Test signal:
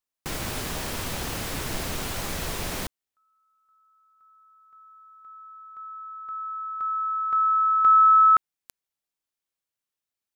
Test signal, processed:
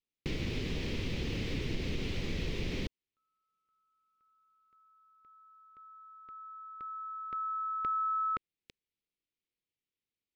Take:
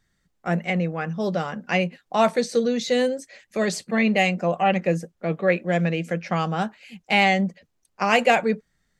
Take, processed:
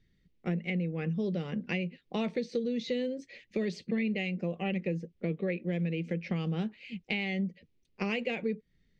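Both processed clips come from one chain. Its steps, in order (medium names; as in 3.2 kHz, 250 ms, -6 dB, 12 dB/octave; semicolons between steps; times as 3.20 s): high-order bell 1 kHz -15.5 dB; compression, threshold -31 dBFS; distance through air 230 m; trim +2.5 dB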